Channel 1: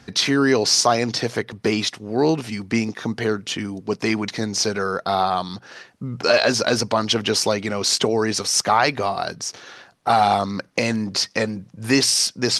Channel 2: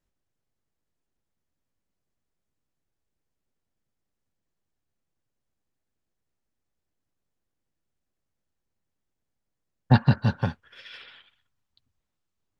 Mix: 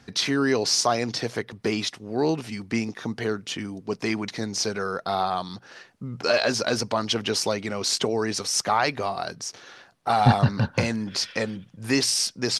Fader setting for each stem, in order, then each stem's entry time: -5.0, -0.5 dB; 0.00, 0.35 s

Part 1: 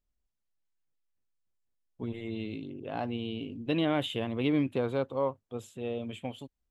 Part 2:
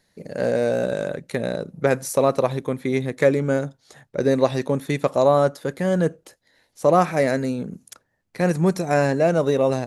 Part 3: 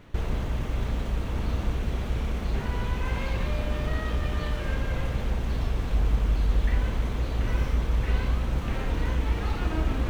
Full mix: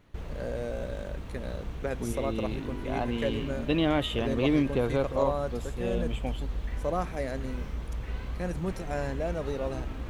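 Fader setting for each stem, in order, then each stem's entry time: +2.5, -14.0, -10.0 dB; 0.00, 0.00, 0.00 s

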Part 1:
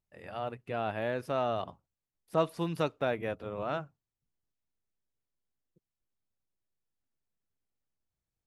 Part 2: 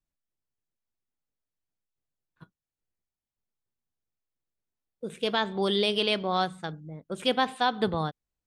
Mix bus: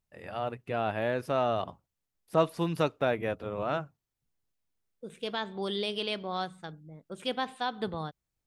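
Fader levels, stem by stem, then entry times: +3.0, -7.0 dB; 0.00, 0.00 s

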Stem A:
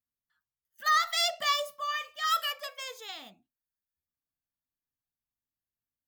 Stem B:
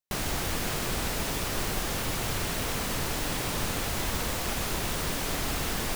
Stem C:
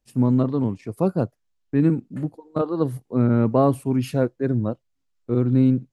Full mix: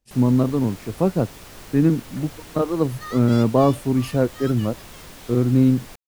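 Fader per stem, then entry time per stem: -12.0, -11.0, +1.5 dB; 2.15, 0.00, 0.00 s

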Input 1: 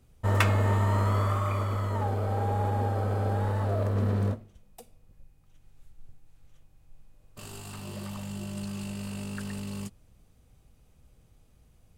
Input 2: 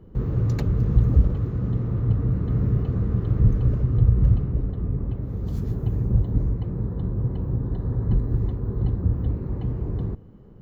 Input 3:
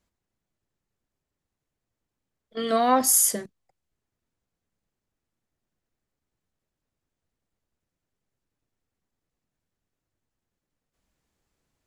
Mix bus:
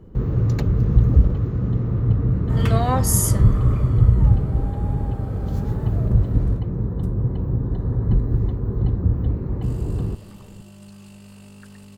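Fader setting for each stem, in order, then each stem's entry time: -7.5, +3.0, -2.5 dB; 2.25, 0.00, 0.00 s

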